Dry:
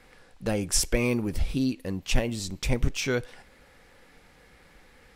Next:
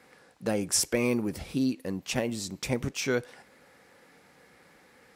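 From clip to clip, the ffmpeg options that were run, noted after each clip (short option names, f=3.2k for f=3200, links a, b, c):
-af "highpass=150,equalizer=f=3.1k:w=1.4:g=-4"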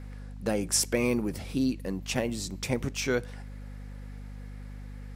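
-af "aeval=exprs='val(0)+0.01*(sin(2*PI*50*n/s)+sin(2*PI*2*50*n/s)/2+sin(2*PI*3*50*n/s)/3+sin(2*PI*4*50*n/s)/4+sin(2*PI*5*50*n/s)/5)':c=same"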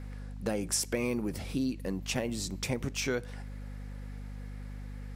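-af "acompressor=threshold=-29dB:ratio=2.5"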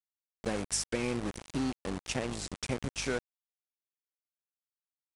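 -af "aeval=exprs='val(0)*gte(abs(val(0)),0.0237)':c=same,aresample=22050,aresample=44100,volume=-1dB"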